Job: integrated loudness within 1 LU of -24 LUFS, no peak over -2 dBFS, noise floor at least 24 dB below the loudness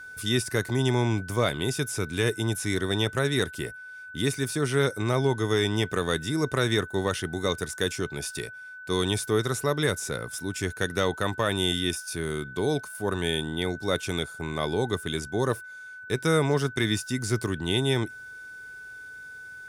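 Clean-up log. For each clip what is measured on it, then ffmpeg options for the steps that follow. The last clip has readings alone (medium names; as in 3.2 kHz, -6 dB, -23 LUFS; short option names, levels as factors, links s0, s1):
steady tone 1.5 kHz; tone level -40 dBFS; loudness -27.5 LUFS; peak level -12.0 dBFS; loudness target -24.0 LUFS
-> -af "bandreject=f=1500:w=30"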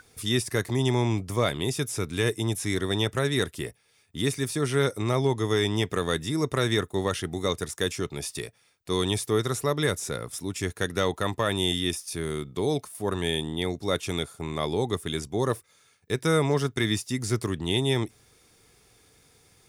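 steady tone not found; loudness -27.5 LUFS; peak level -12.0 dBFS; loudness target -24.0 LUFS
-> -af "volume=1.5"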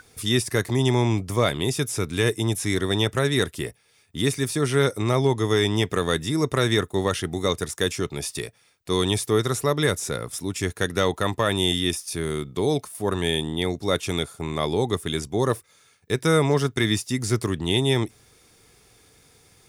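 loudness -24.0 LUFS; peak level -8.5 dBFS; noise floor -60 dBFS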